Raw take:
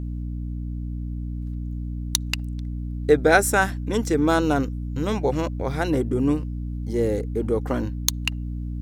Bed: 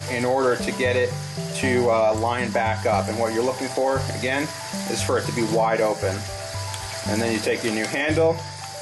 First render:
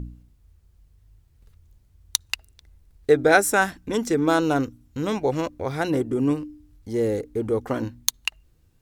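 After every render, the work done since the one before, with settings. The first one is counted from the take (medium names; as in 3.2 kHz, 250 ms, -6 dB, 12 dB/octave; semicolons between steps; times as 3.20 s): de-hum 60 Hz, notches 5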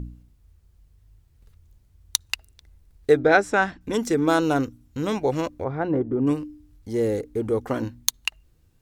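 3.19–3.81 s: distance through air 140 m; 5.64–6.27 s: low-pass 1.3 kHz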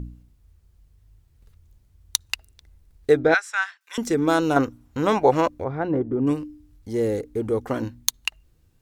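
3.34–3.98 s: high-pass 1.2 kHz 24 dB/octave; 4.56–5.48 s: peaking EQ 950 Hz +10.5 dB 2.2 oct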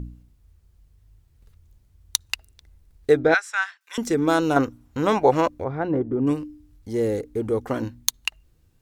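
no audible change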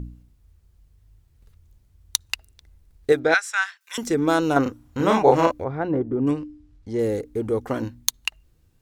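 3.12–4.03 s: tilt EQ +2 dB/octave; 4.62–5.62 s: doubling 36 ms -2.5 dB; 6.31–6.99 s: distance through air 74 m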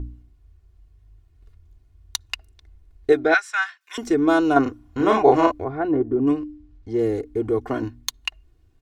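low-pass 2.9 kHz 6 dB/octave; comb 2.8 ms, depth 68%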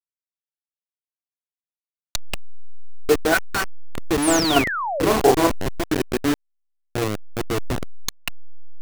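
send-on-delta sampling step -15.5 dBFS; 4.22–5.08 s: painted sound fall 390–11000 Hz -25 dBFS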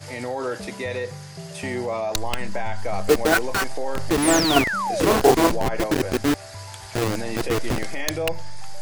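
add bed -7.5 dB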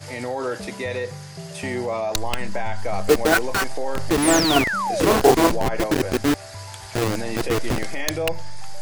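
trim +1 dB; peak limiter -3 dBFS, peak gain reduction 2.5 dB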